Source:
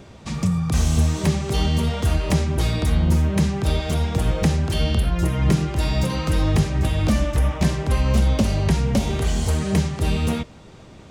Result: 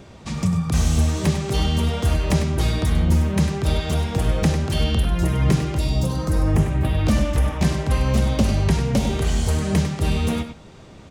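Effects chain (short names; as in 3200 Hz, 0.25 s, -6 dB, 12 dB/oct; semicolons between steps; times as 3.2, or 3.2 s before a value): 5.77–7.05 bell 1300 Hz -> 8400 Hz -14.5 dB 1 oct; outdoor echo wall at 17 m, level -9 dB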